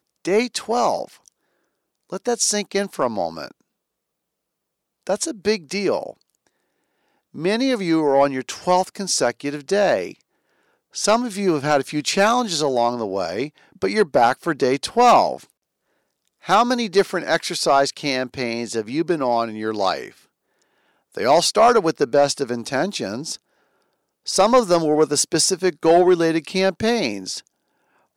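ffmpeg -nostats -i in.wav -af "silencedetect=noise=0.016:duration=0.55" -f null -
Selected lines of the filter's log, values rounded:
silence_start: 1.28
silence_end: 2.10 | silence_duration: 0.82
silence_start: 3.51
silence_end: 5.07 | silence_duration: 1.56
silence_start: 6.11
silence_end: 7.35 | silence_duration: 1.24
silence_start: 10.12
silence_end: 10.95 | silence_duration: 0.83
silence_start: 15.43
silence_end: 16.45 | silence_duration: 1.02
silence_start: 20.11
silence_end: 21.15 | silence_duration: 1.04
silence_start: 23.36
silence_end: 24.26 | silence_duration: 0.91
silence_start: 27.40
silence_end: 28.16 | silence_duration: 0.76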